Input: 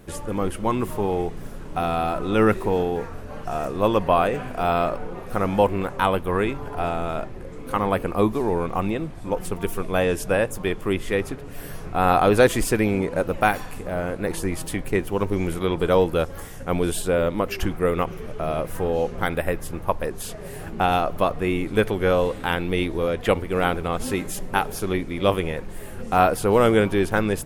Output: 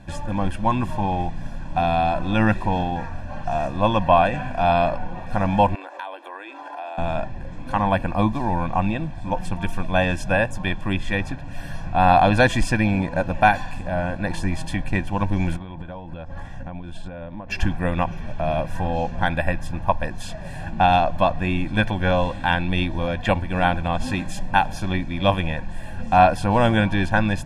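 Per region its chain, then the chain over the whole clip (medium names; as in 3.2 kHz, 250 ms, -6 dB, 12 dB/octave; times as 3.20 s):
5.75–6.98 s: steep high-pass 290 Hz 96 dB/octave + compression 5:1, threshold -33 dBFS
15.56–17.50 s: low-pass 1.8 kHz 6 dB/octave + compression 12:1, threshold -31 dBFS
whole clip: low-pass 5.4 kHz 12 dB/octave; comb 1.2 ms, depth 95%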